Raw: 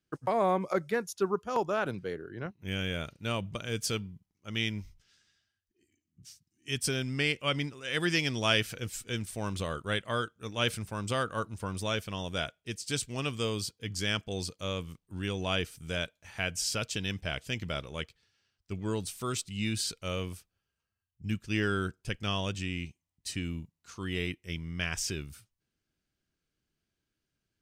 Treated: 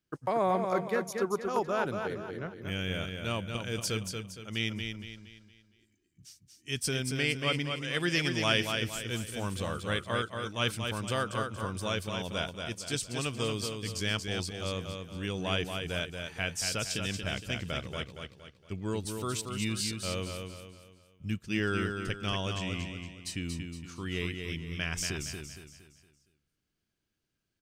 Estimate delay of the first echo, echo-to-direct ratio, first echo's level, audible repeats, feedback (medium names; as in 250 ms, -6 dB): 232 ms, -4.5 dB, -5.5 dB, 4, 40%